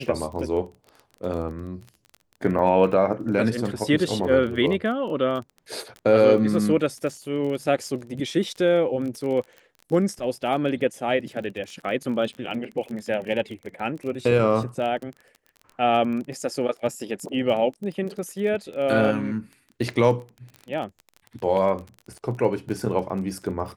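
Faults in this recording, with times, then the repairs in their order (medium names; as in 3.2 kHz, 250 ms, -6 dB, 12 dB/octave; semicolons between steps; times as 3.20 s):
crackle 24 per s -32 dBFS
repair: de-click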